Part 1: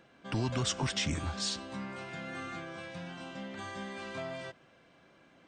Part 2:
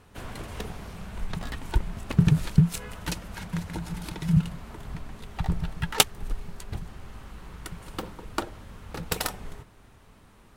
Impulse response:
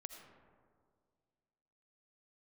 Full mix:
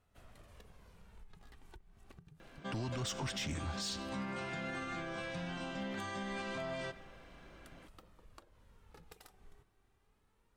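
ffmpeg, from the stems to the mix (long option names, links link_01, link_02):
-filter_complex "[0:a]asoftclip=type=tanh:threshold=-26dB,adelay=2400,volume=1dB,asplit=2[link_01][link_02];[link_02]volume=-4dB[link_03];[1:a]acompressor=threshold=-33dB:ratio=12,flanger=delay=1.5:depth=1.1:regen=50:speed=0.26:shape=sinusoidal,volume=-16dB[link_04];[2:a]atrim=start_sample=2205[link_05];[link_03][link_05]afir=irnorm=-1:irlink=0[link_06];[link_01][link_04][link_06]amix=inputs=3:normalize=0,alimiter=level_in=8dB:limit=-24dB:level=0:latency=1:release=147,volume=-8dB"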